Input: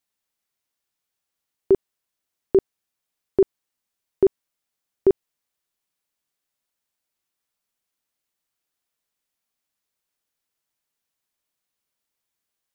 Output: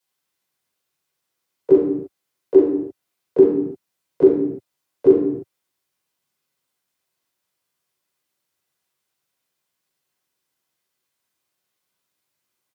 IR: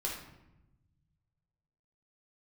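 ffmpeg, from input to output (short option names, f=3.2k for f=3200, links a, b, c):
-filter_complex "[0:a]highpass=f=99:w=0.5412,highpass=f=99:w=1.3066,acrossover=split=150|430[a][b][c];[a]acompressor=threshold=-50dB:ratio=4[d];[b]acompressor=threshold=-21dB:ratio=4[e];[c]acompressor=threshold=-20dB:ratio=4[f];[d][e][f]amix=inputs=3:normalize=0,asplit=3[g][h][i];[h]asetrate=33038,aresample=44100,atempo=1.33484,volume=-3dB[j];[i]asetrate=52444,aresample=44100,atempo=0.840896,volume=-7dB[k];[g][j][k]amix=inputs=3:normalize=0[l];[1:a]atrim=start_sample=2205,afade=t=out:st=0.37:d=0.01,atrim=end_sample=16758[m];[l][m]afir=irnorm=-1:irlink=0,volume=1dB"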